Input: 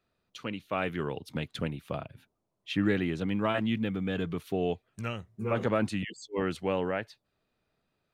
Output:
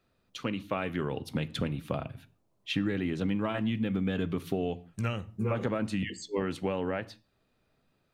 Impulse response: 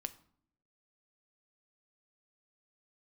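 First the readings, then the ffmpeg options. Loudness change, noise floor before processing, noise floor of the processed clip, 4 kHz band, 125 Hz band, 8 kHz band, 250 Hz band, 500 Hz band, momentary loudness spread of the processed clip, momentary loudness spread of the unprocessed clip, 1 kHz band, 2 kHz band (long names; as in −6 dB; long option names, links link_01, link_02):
−0.5 dB, −81 dBFS, −73 dBFS, +0.5 dB, +1.5 dB, can't be measured, 0.0 dB, −2.0 dB, 6 LU, 11 LU, −2.5 dB, −2.0 dB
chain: -filter_complex "[0:a]acompressor=threshold=-32dB:ratio=6,asplit=2[link_01][link_02];[1:a]atrim=start_sample=2205,afade=type=out:start_time=0.24:duration=0.01,atrim=end_sample=11025,lowshelf=frequency=320:gain=5[link_03];[link_02][link_03]afir=irnorm=-1:irlink=0,volume=7dB[link_04];[link_01][link_04]amix=inputs=2:normalize=0,volume=-5dB"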